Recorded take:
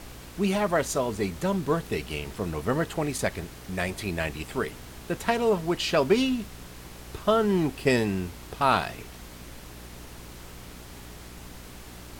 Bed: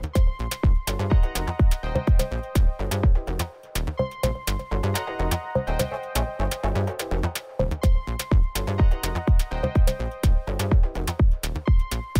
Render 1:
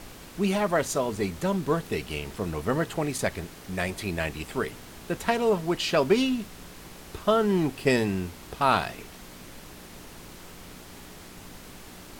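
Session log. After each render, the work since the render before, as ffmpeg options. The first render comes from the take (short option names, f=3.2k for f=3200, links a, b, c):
-af "bandreject=f=60:t=h:w=4,bandreject=f=120:t=h:w=4"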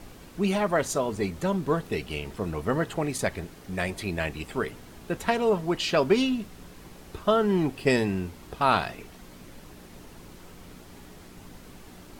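-af "afftdn=nr=6:nf=-46"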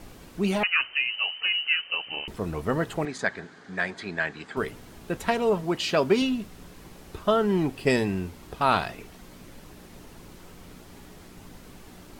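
-filter_complex "[0:a]asettb=1/sr,asplit=3[a][b][c];[a]atrim=end=0.634[d];[b]atrim=start=0.63:end=2.28,asetpts=PTS-STARTPTS,afade=t=in:d=0.004:c=qsin,afade=t=out:st=1.646:d=0.004:c=qsin,lowpass=f=2.6k:t=q:w=0.5098,lowpass=f=2.6k:t=q:w=0.6013,lowpass=f=2.6k:t=q:w=0.9,lowpass=f=2.6k:t=q:w=2.563,afreqshift=-3100[e];[c]atrim=start=2.276[f];[d][e]acrossfade=d=0.004:c1=hsin:c2=qsin[g];[g][f]acrossfade=d=0.004:c1=qsin:c2=hsin,asettb=1/sr,asplit=3[h][i][j];[h]atrim=end=3.054[k];[i]atrim=start=3.05:end=4.57,asetpts=PTS-STARTPTS,afade=t=in:d=0.004:c=qsin,afade=t=out:st=1.516:d=0.004:c=qsin,highpass=210,equalizer=f=330:t=q:w=4:g=-5,equalizer=f=560:t=q:w=4:g=-5,equalizer=f=1.6k:t=q:w=4:g=10,equalizer=f=2.7k:t=q:w=4:g=-7,equalizer=f=5.6k:t=q:w=4:g=-6,lowpass=f=6.5k:w=0.5412,lowpass=f=6.5k:w=1.3066[l];[j]atrim=start=4.566[m];[k][l]acrossfade=d=0.004:c1=hsin:c2=qsin[n];[n][m]acrossfade=d=0.004:c1=qsin:c2=hsin,asettb=1/sr,asplit=3[o][p][q];[o]atrim=end=5.634[r];[p]atrim=start=5.63:end=6.22,asetpts=PTS-STARTPTS,afade=t=in:d=0.004:c=qsin,afade=t=out:st=0.586:d=0.004:c=qsin,highpass=73[s];[q]atrim=start=6.216[t];[r][s]acrossfade=d=0.004:c1=hsin:c2=qsin[u];[u][t]acrossfade=d=0.004:c1=qsin:c2=hsin"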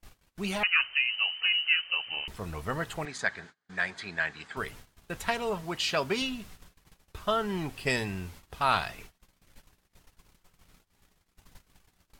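-af "agate=range=-31dB:threshold=-43dB:ratio=16:detection=peak,equalizer=f=310:t=o:w=2.4:g=-11"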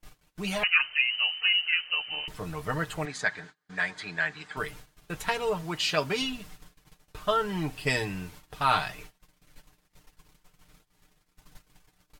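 -af "aecho=1:1:6.6:0.65"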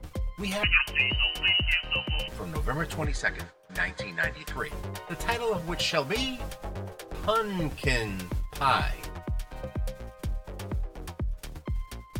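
-filter_complex "[1:a]volume=-13dB[a];[0:a][a]amix=inputs=2:normalize=0"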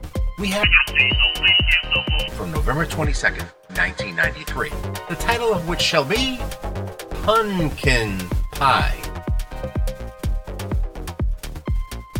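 -af "volume=9dB,alimiter=limit=-3dB:level=0:latency=1"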